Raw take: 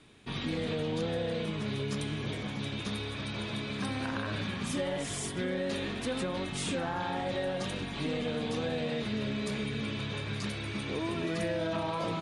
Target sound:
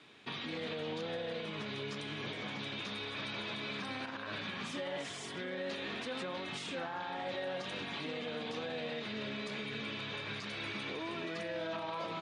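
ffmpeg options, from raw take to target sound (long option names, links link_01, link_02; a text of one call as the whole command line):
ffmpeg -i in.wav -af "lowshelf=frequency=390:gain=-10.5,alimiter=level_in=10dB:limit=-24dB:level=0:latency=1:release=159,volume=-10dB,highpass=120,lowpass=4900,volume=3.5dB" out.wav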